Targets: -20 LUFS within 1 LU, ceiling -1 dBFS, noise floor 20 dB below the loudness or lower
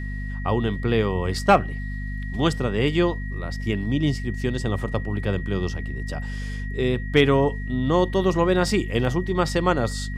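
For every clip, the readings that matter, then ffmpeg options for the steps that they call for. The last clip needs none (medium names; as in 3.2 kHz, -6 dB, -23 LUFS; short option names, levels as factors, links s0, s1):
hum 50 Hz; highest harmonic 250 Hz; hum level -27 dBFS; steady tone 1.9 kHz; tone level -38 dBFS; loudness -23.5 LUFS; peak level -4.5 dBFS; loudness target -20.0 LUFS
-> -af "bandreject=f=50:t=h:w=6,bandreject=f=100:t=h:w=6,bandreject=f=150:t=h:w=6,bandreject=f=200:t=h:w=6,bandreject=f=250:t=h:w=6"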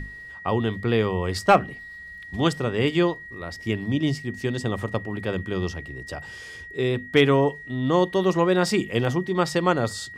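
hum not found; steady tone 1.9 kHz; tone level -38 dBFS
-> -af "bandreject=f=1900:w=30"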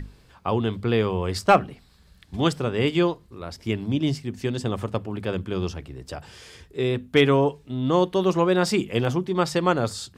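steady tone not found; loudness -24.0 LUFS; peak level -5.5 dBFS; loudness target -20.0 LUFS
-> -af "volume=1.58"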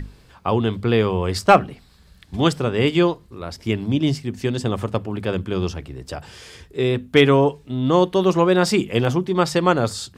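loudness -20.0 LUFS; peak level -1.5 dBFS; noise floor -51 dBFS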